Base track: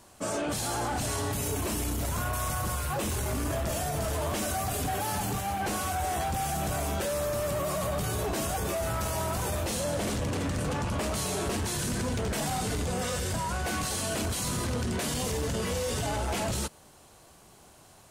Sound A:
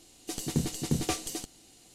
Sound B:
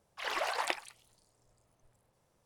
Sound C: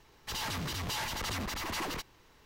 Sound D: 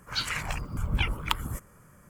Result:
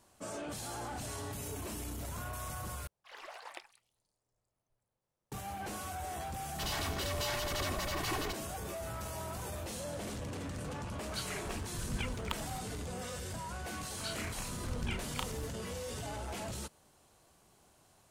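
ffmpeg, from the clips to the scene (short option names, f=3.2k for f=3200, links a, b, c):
-filter_complex "[4:a]asplit=2[a][b];[0:a]volume=-10.5dB[c];[3:a]aecho=1:1:2.7:0.65[d];[b]asplit=2[e][f];[f]adelay=34,volume=-4dB[g];[e][g]amix=inputs=2:normalize=0[h];[c]asplit=2[i][j];[i]atrim=end=2.874[k];[2:a]atrim=end=2.45,asetpts=PTS-STARTPTS,volume=-14.5dB[l];[j]atrim=start=5.316[m];[d]atrim=end=2.45,asetpts=PTS-STARTPTS,volume=-2.5dB,afade=t=in:d=0.004:c=hsin,afade=t=out:st=2.446:d=0.004:c=hsin,adelay=6310[n];[a]atrim=end=2.09,asetpts=PTS-STARTPTS,volume=-11.5dB,afade=t=in:d=0.004:c=hsin,afade=t=out:st=2.086:d=0.004:c=hsin,adelay=11000[o];[h]atrim=end=2.09,asetpts=PTS-STARTPTS,volume=-13dB,afade=t=in:d=0.004:c=hsin,afade=t=out:st=2.086:d=0.004:c=hsin,adelay=13880[p];[k][l]acrossfade=d=0.004:c1=hsin:c2=hsin[q];[q][m]acrossfade=d=0.004:c1=hsin:c2=hsin[r];[r][n][o][p]amix=inputs=4:normalize=0"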